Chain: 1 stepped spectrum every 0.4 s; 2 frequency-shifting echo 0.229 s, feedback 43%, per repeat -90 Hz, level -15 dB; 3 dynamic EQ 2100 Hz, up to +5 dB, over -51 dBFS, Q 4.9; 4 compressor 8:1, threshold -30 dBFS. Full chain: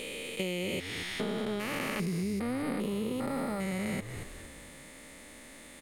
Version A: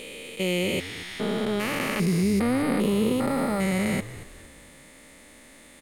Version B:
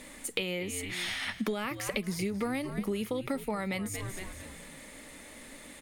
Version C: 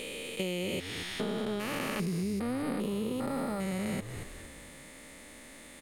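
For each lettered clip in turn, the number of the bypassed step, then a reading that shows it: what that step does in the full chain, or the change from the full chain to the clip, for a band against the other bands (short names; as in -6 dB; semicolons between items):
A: 4, mean gain reduction 5.0 dB; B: 1, 8 kHz band +4.5 dB; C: 3, 2 kHz band -2.0 dB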